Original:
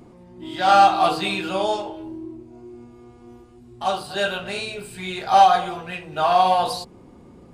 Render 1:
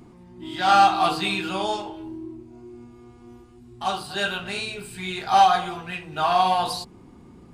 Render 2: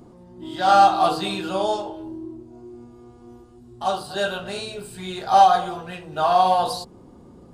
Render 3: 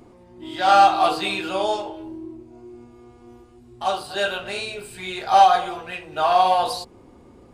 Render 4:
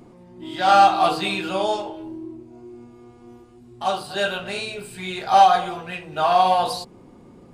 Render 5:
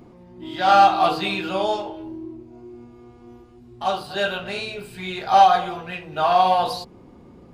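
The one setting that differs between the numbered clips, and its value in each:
peaking EQ, frequency: 550 Hz, 2.3 kHz, 170 Hz, 62 Hz, 8.6 kHz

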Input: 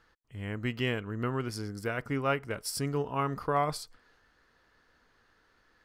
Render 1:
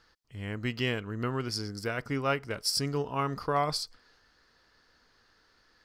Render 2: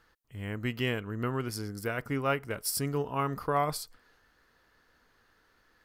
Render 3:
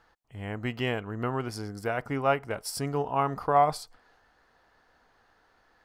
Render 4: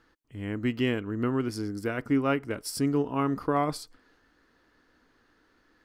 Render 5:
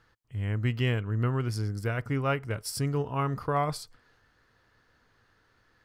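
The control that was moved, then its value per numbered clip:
peaking EQ, frequency: 4.9 kHz, 14 kHz, 760 Hz, 290 Hz, 110 Hz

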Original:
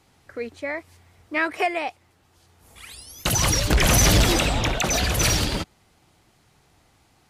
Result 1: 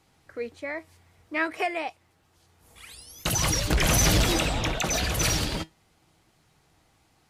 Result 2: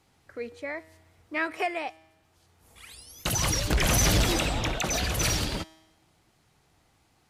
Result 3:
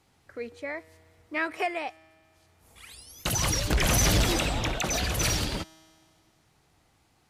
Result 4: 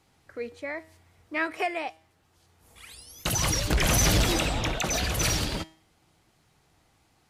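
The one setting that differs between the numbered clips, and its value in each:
feedback comb, decay: 0.17 s, 1 s, 2.1 s, 0.46 s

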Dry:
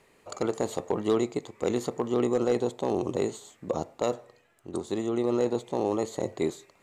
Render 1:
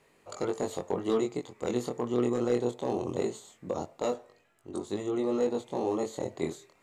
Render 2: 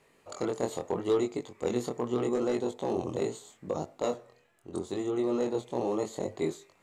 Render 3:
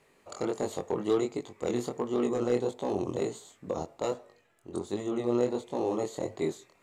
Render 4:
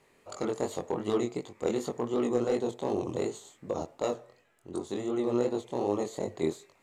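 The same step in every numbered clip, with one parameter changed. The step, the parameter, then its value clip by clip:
chorus, rate: 0.21 Hz, 0.77 Hz, 1.4 Hz, 2.7 Hz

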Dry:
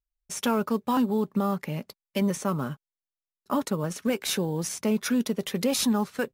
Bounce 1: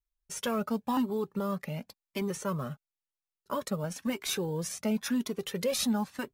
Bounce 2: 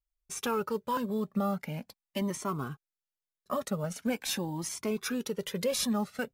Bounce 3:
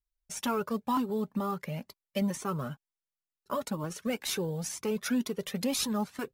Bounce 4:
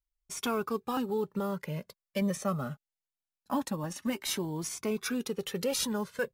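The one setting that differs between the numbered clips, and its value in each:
Shepard-style flanger, rate: 0.96 Hz, 0.43 Hz, 2.1 Hz, 0.23 Hz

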